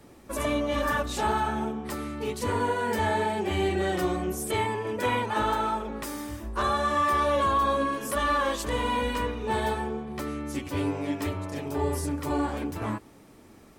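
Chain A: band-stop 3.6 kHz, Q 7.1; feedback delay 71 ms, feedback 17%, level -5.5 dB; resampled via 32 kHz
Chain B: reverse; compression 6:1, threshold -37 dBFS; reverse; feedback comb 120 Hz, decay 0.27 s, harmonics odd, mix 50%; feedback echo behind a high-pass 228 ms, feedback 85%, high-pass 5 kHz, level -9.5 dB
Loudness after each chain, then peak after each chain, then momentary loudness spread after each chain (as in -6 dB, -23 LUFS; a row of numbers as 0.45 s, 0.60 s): -27.0 LUFS, -44.5 LUFS; -13.0 dBFS, -31.0 dBFS; 10 LU, 3 LU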